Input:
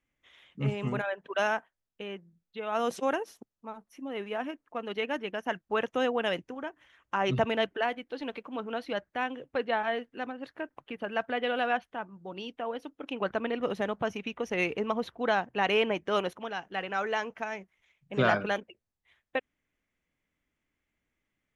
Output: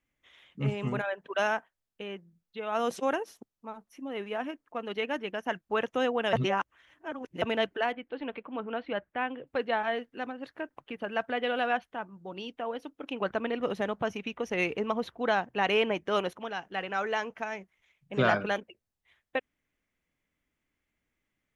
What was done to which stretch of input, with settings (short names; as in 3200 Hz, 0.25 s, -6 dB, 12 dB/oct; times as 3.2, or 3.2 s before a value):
6.33–7.42 reverse
7.92–9.47 LPF 3100 Hz 24 dB/oct